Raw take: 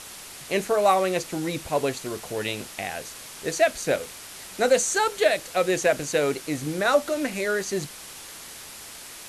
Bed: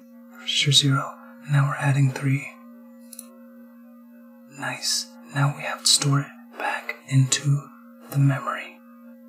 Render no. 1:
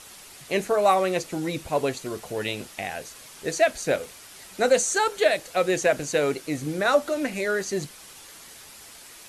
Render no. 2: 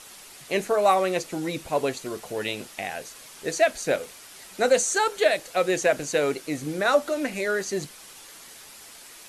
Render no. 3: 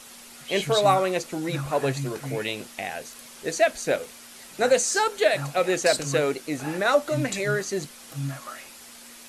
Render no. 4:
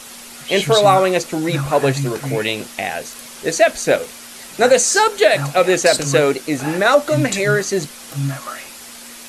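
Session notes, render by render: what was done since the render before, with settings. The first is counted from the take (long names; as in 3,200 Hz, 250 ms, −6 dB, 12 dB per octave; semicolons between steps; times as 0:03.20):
broadband denoise 6 dB, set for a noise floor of −42 dBFS
parametric band 76 Hz −6.5 dB 1.8 octaves
mix in bed −11.5 dB
level +9 dB; brickwall limiter −2 dBFS, peak gain reduction 3 dB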